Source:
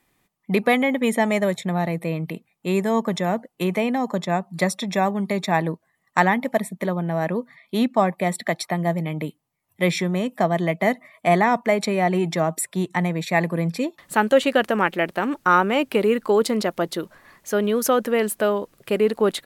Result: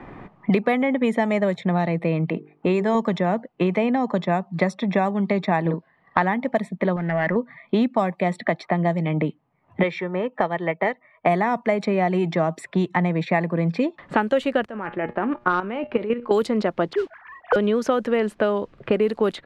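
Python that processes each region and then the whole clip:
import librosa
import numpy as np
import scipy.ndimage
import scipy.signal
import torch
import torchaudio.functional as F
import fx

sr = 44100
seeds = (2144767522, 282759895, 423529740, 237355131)

y = fx.chain(x, sr, fx.lowpass(hz=10000.0, slope=12),
    fx.bass_treble(bass_db=-4, treble_db=5),
    fx.hum_notches(base_hz=50, count=9), at=(2.29, 2.95))
y = fx.chain(y, sr, fx.doubler(ms=42.0, db=-4),
    fx.resample_bad(factor=4, down='none', up='filtered'), at=(5.61, 6.22))
y = fx.chain(y, sr, fx.ladder_lowpass(hz=2100.0, resonance_pct=80),
    fx.leveller(passes=2), at=(6.96, 7.36))
y = fx.chain(y, sr, fx.low_shelf(hz=490.0, db=-10.5),
    fx.comb(ms=2.2, depth=0.41),
    fx.upward_expand(threshold_db=-38.0, expansion=1.5), at=(9.83, 11.26))
y = fx.chain(y, sr, fx.comb_fb(f0_hz=120.0, decay_s=0.23, harmonics='all', damping=0.0, mix_pct=60),
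    fx.clip_hard(threshold_db=-12.0),
    fx.level_steps(step_db=11), at=(14.65, 16.31))
y = fx.chain(y, sr, fx.sine_speech(),
    fx.mod_noise(seeds[0], snr_db=16), at=(16.93, 17.56))
y = fx.env_lowpass(y, sr, base_hz=1400.0, full_db=-13.5)
y = fx.lowpass(y, sr, hz=2500.0, slope=6)
y = fx.band_squash(y, sr, depth_pct=100)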